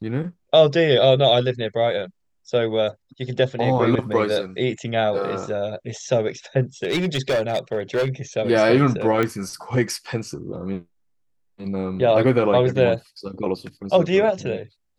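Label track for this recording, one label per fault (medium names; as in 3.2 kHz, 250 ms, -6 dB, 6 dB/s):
6.830000	8.090000	clipped -17 dBFS
9.230000	9.230000	pop -10 dBFS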